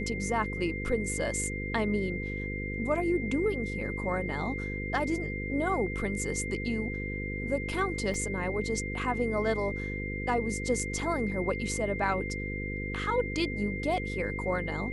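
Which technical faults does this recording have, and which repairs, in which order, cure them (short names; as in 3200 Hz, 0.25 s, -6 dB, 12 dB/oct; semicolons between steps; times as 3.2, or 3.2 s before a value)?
buzz 50 Hz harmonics 10 -36 dBFS
tone 2100 Hz -37 dBFS
8.14 gap 2.2 ms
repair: notch 2100 Hz, Q 30; de-hum 50 Hz, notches 10; interpolate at 8.14, 2.2 ms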